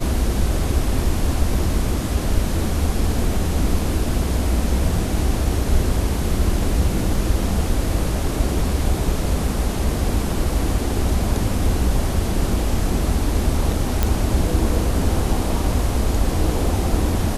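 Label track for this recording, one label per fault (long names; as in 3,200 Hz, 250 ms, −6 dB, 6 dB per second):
14.030000	14.030000	click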